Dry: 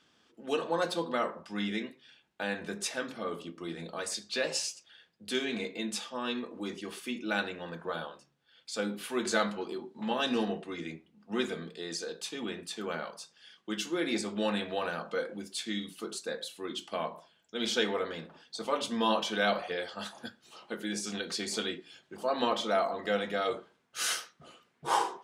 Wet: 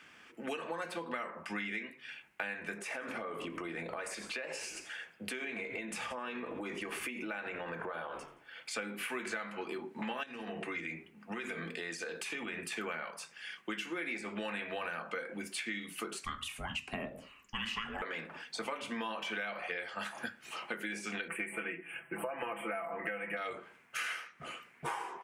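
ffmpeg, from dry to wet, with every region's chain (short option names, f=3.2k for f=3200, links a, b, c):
-filter_complex "[0:a]asettb=1/sr,asplit=3[a][b][c];[a]atrim=end=2.784[d];[b]atrim=start=2.78:end=8.71,asetpts=PTS-STARTPTS,afade=t=in:d=0.004:c=qsin,afade=t=out:st=5.926:d=0.004:c=qsin,equalizer=f=610:w=0.57:g=8,asplit=5[e][f][g][h][i];[f]adelay=86,afreqshift=-51,volume=-21dB[j];[g]adelay=172,afreqshift=-102,volume=-26.7dB[k];[h]adelay=258,afreqshift=-153,volume=-32.4dB[l];[i]adelay=344,afreqshift=-204,volume=-38dB[m];[e][j][k][l][m]amix=inputs=5:normalize=0,atrim=end_sample=261513,acompressor=threshold=-41dB:ratio=6:attack=3.2:release=140:knee=1:detection=peak[n];[c]atrim=start=8.706[o];[d][n]acrossfade=d=0.004:c1=hsin:c2=qsin[p];[p][o]acrossfade=d=0.004:c1=qsin:c2=hsin,asettb=1/sr,asplit=3[q][r][s];[q]atrim=end=10.234[t];[r]atrim=start=10.23:end=12.72,asetpts=PTS-STARTPTS,afade=t=in:d=0.004:c=qsin,afade=t=out:st=2.486:d=0.004:c=qsin,bandreject=f=50:t=h:w=6,bandreject=f=100:t=h:w=6,bandreject=f=150:t=h:w=6,bandreject=f=200:t=h:w=6,bandreject=f=250:t=h:w=6,bandreject=f=300:t=h:w=6,bandreject=f=350:t=h:w=6,bandreject=f=400:t=h:w=6,bandreject=f=450:t=h:w=6,acompressor=threshold=-39dB:ratio=16:attack=3.2:release=140:knee=1:detection=peak[u];[s]atrim=start=12.716[v];[t][u]acrossfade=d=0.004:c1=hsin:c2=qsin[w];[w][v]acrossfade=d=0.004:c1=qsin:c2=hsin,asettb=1/sr,asplit=3[x][y][z];[x]atrim=end=16.244[aa];[y]atrim=start=16.24:end=18.02,asetpts=PTS-STARTPTS,afade=t=in:d=0.004:c=qsin,afade=t=out:st=1.776:d=0.004:c=qsin,equalizer=f=2.7k:t=o:w=0.33:g=-6.5,afreqshift=-440[ab];[z]atrim=start=18.016[ac];[aa][ab]acrossfade=d=0.004:c1=hsin:c2=qsin[ad];[ad][ac]acrossfade=d=0.004:c1=qsin:c2=hsin,asettb=1/sr,asplit=3[ae][af][ag];[ae]atrim=end=21.284[ah];[af]atrim=start=21.28:end=23.37,asetpts=PTS-STARTPTS,afade=t=in:d=0.004:c=qsin,afade=t=out:st=2.086:d=0.004:c=qsin,asuperstop=centerf=5000:order=12:qfactor=0.9,aecho=1:1:6:0.82,atrim=end_sample=92169[ai];[ag]atrim=start=23.366[aj];[ah][ai]acrossfade=d=0.004:c1=hsin:c2=qsin[ak];[ak][aj]acrossfade=d=0.004:c1=qsin:c2=hsin,acrossover=split=190|4200[al][am][an];[al]acompressor=threshold=-50dB:ratio=4[ao];[am]acompressor=threshold=-31dB:ratio=4[ap];[an]acompressor=threshold=-49dB:ratio=4[aq];[ao][ap][aq]amix=inputs=3:normalize=0,firequalizer=gain_entry='entry(400,0);entry(2300,14);entry(3600,-4);entry(9200,5)':delay=0.05:min_phase=1,acompressor=threshold=-41dB:ratio=6,volume=4.5dB"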